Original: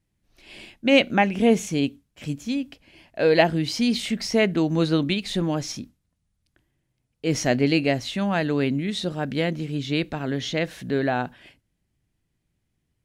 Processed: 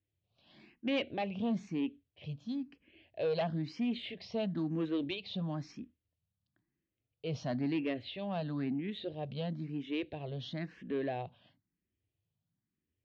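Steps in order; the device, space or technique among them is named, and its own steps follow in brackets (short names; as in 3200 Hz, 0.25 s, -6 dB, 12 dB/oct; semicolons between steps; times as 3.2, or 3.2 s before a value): barber-pole phaser into a guitar amplifier (endless phaser +1 Hz; soft clip -18.5 dBFS, distortion -12 dB; speaker cabinet 89–3800 Hz, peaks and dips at 94 Hz +6 dB, 890 Hz -5 dB, 1400 Hz -7 dB, 2100 Hz -4 dB); gain -8 dB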